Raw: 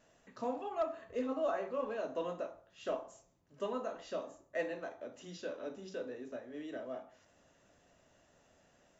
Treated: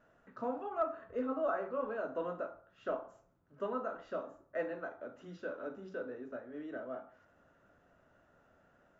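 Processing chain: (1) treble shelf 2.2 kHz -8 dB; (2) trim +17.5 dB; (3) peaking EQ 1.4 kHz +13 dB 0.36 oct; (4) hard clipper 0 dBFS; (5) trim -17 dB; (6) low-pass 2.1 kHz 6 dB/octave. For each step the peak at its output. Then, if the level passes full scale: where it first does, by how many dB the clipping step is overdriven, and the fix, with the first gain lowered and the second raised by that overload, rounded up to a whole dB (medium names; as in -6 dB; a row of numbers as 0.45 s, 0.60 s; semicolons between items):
-25.0 dBFS, -7.5 dBFS, -3.5 dBFS, -3.5 dBFS, -20.5 dBFS, -21.5 dBFS; nothing clips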